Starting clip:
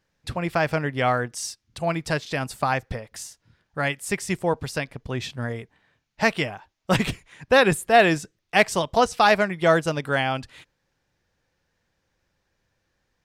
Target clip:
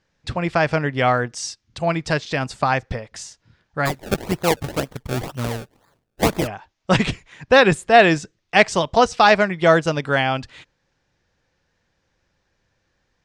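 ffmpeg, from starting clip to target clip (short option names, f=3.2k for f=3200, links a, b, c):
-filter_complex "[0:a]lowpass=f=7.5k:w=0.5412,lowpass=f=7.5k:w=1.3066,asplit=3[a][b][c];[a]afade=t=out:st=3.85:d=0.02[d];[b]acrusher=samples=30:mix=1:aa=0.000001:lfo=1:lforange=30:lforate=2,afade=t=in:st=3.85:d=0.02,afade=t=out:st=6.46:d=0.02[e];[c]afade=t=in:st=6.46:d=0.02[f];[d][e][f]amix=inputs=3:normalize=0,volume=4dB"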